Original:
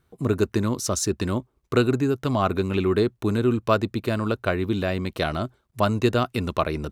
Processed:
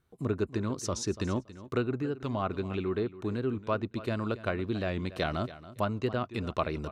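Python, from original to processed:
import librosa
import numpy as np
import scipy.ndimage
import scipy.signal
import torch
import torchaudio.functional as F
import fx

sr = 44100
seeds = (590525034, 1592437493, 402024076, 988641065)

p1 = fx.env_lowpass_down(x, sr, base_hz=2800.0, full_db=-16.5)
p2 = fx.rider(p1, sr, range_db=5, speed_s=0.5)
p3 = p2 + fx.echo_feedback(p2, sr, ms=280, feedback_pct=18, wet_db=-16, dry=0)
p4 = fx.record_warp(p3, sr, rpm=45.0, depth_cents=100.0)
y = p4 * 10.0 ** (-8.5 / 20.0)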